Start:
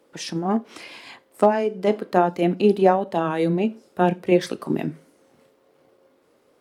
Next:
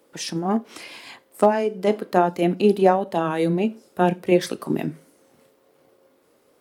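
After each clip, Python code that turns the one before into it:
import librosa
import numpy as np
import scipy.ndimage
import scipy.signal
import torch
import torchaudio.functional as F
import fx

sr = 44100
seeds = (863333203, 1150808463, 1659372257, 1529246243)

y = fx.high_shelf(x, sr, hz=8400.0, db=9.5)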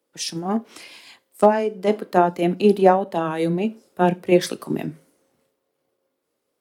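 y = fx.band_widen(x, sr, depth_pct=40)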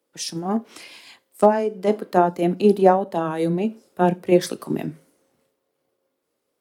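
y = fx.dynamic_eq(x, sr, hz=2600.0, q=1.0, threshold_db=-38.0, ratio=4.0, max_db=-5)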